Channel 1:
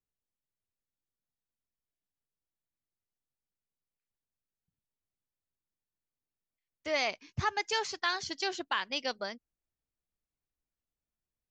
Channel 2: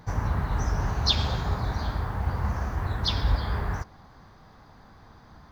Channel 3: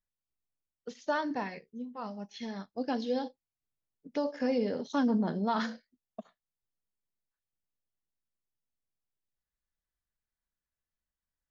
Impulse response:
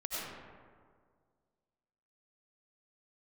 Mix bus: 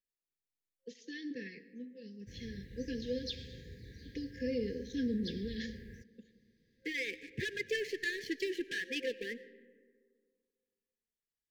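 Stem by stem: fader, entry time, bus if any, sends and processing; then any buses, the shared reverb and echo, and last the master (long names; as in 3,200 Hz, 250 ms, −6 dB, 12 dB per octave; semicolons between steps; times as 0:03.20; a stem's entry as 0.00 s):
0.0 dB, 0.00 s, send −17.5 dB, three-way crossover with the lows and the highs turned down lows −15 dB, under 260 Hz, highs −24 dB, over 2,300 Hz; downward compressor 2.5 to 1, threshold −38 dBFS, peak gain reduction 8.5 dB; leveller curve on the samples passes 3
−17.5 dB, 2.20 s, no send, no processing
−5.5 dB, 0.00 s, send −17.5 dB, no processing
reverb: on, RT60 1.9 s, pre-delay 55 ms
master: brick-wall band-stop 530–1,600 Hz; low-shelf EQ 97 Hz −10 dB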